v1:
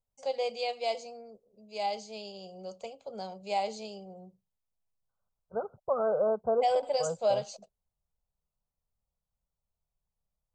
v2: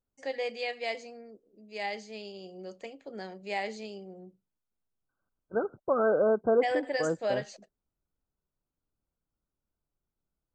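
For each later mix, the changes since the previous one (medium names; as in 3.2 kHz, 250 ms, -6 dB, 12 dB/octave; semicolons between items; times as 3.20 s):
first voice -5.0 dB; master: remove static phaser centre 750 Hz, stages 4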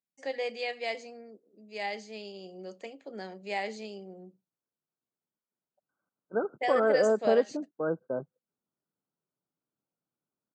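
second voice: entry +0.80 s; master: add high-pass 140 Hz 24 dB/octave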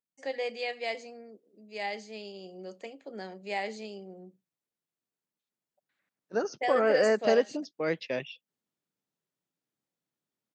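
second voice: remove brick-wall FIR low-pass 1.6 kHz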